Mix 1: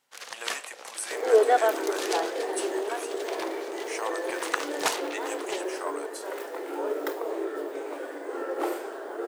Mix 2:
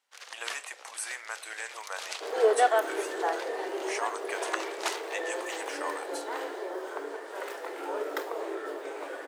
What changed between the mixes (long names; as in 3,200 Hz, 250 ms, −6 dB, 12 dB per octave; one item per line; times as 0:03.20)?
first sound −5.5 dB
second sound: entry +1.10 s
master: add meter weighting curve A